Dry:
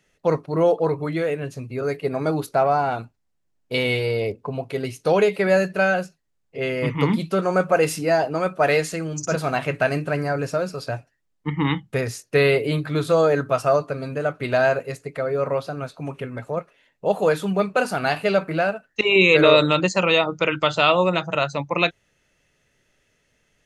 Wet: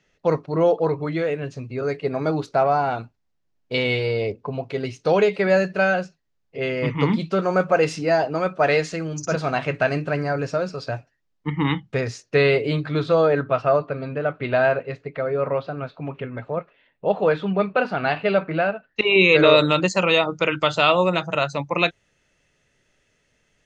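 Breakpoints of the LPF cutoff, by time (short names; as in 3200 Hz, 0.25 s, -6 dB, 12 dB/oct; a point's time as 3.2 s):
LPF 24 dB/oct
12.74 s 6300 Hz
13.44 s 3700 Hz
18.73 s 3700 Hz
19.89 s 9400 Hz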